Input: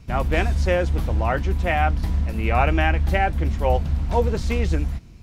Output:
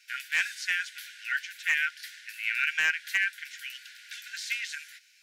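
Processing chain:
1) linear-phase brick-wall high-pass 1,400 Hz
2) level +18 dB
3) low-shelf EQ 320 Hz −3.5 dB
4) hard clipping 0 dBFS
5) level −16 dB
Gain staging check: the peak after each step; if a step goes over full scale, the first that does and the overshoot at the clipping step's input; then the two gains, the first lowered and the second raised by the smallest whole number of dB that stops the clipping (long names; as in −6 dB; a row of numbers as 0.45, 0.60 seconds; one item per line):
−12.5, +5.5, +5.5, 0.0, −16.0 dBFS
step 2, 5.5 dB
step 2 +12 dB, step 5 −10 dB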